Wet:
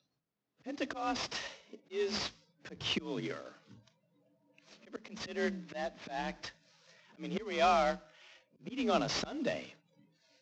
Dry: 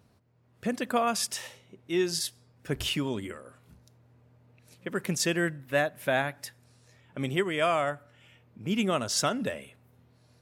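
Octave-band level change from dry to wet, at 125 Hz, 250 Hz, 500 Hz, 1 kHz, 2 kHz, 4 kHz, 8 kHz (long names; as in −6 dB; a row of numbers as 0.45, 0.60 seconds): −11.5, −7.5, −6.0, −3.5, −8.0, −5.5, −14.0 decibels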